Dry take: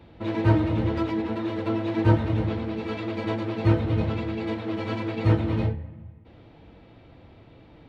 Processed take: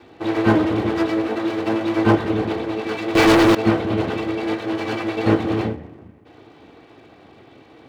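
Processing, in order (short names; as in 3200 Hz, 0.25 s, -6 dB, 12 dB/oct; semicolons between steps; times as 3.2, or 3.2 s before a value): minimum comb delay 2.6 ms; HPF 160 Hz 12 dB/oct; 3.15–3.55 sample leveller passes 5; gain +7.5 dB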